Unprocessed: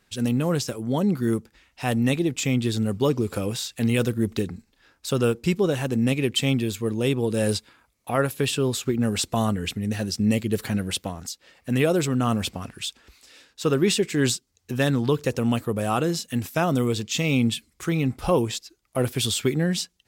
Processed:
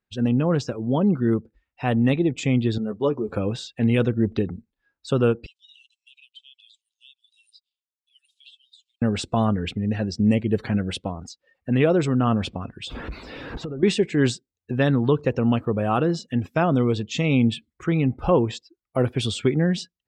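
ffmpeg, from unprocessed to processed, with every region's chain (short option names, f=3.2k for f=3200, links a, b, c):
-filter_complex "[0:a]asettb=1/sr,asplit=3[a][b][c];[a]atrim=end=2.784[d];[b]atrim=start=2.78:end=3.29,asetpts=PTS-STARTPTS,afade=t=in:d=0.004:c=qsin,afade=t=out:st=0.506:d=0.004:c=qsin,highpass=f=490:p=1,equalizer=f=3k:t=o:w=2.4:g=-5.5,asplit=2[e][f];[f]adelay=14,volume=-6dB[g];[e][g]amix=inputs=2:normalize=0,atrim=end_sample=22491[h];[c]atrim=start=3.286[i];[d][h]acrossfade=d=0.004:c1=hsin:c2=qsin[j];[j][i]acrossfade=d=0.004:c1=qsin:c2=hsin,asettb=1/sr,asplit=3[k][l][m];[k]atrim=end=5.464[n];[l]atrim=start=5.46:end=9.02,asetpts=PTS-STARTPTS,afade=t=in:d=0.004:c=qsin,afade=t=out:st=3.556:d=0.004:c=qsin,asuperpass=centerf=5600:order=12:qfactor=0.81,acompressor=threshold=-40dB:ratio=5:attack=3.2:release=140:knee=1:detection=peak[o];[m]atrim=start=9.016[p];[n][o]acrossfade=d=0.004:c1=hsin:c2=qsin[q];[q][p]acrossfade=d=0.004:c1=qsin:c2=hsin,asettb=1/sr,asplit=3[r][s][t];[r]atrim=end=12.874[u];[s]atrim=start=12.87:end=13.83,asetpts=PTS-STARTPTS,afade=t=in:d=0.004:c=qsin,afade=t=out:st=0.956:d=0.004:c=qsin,aeval=exprs='val(0)+0.5*0.0376*sgn(val(0))':c=same,tiltshelf=f=880:g=5,acompressor=threshold=-30dB:ratio=16:attack=3.2:release=140:knee=1:detection=peak[v];[t]atrim=start=13.826[w];[u][v]acrossfade=d=0.004:c1=hsin:c2=qsin[x];[x][w]acrossfade=d=0.004:c1=qsin:c2=hsin,lowpass=f=2.2k:p=1,afftdn=nr=22:nf=-46,volume=2.5dB"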